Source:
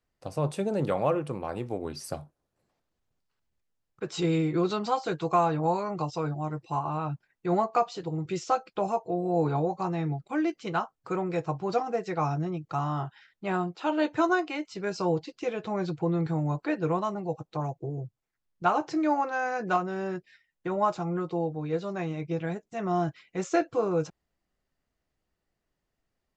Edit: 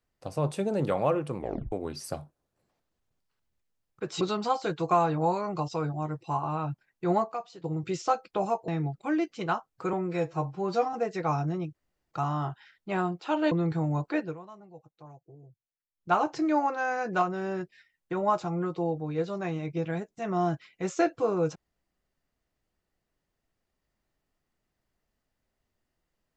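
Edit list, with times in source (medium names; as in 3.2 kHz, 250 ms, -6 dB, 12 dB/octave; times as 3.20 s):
1.37 s: tape stop 0.35 s
4.21–4.63 s: delete
7.74–8.06 s: gain -10.5 dB
9.10–9.94 s: delete
11.19–11.86 s: stretch 1.5×
12.67 s: insert room tone 0.37 s
14.07–16.06 s: delete
16.73–18.67 s: dip -17.5 dB, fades 0.18 s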